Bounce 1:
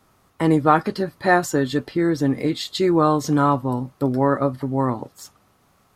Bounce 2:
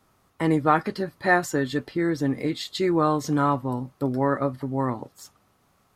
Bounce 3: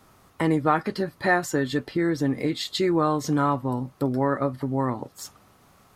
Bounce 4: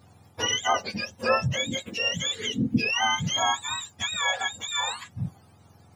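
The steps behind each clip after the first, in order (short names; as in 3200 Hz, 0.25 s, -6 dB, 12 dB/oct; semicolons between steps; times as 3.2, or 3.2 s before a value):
dynamic EQ 2000 Hz, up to +5 dB, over -39 dBFS, Q 2.4; gain -4.5 dB
compressor 1.5:1, threshold -42 dBFS, peak gain reduction 10 dB; gain +8 dB
spectrum mirrored in octaves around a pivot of 970 Hz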